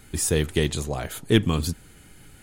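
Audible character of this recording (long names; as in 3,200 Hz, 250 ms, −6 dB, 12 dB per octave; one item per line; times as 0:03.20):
background noise floor −50 dBFS
spectral slope −4.5 dB per octave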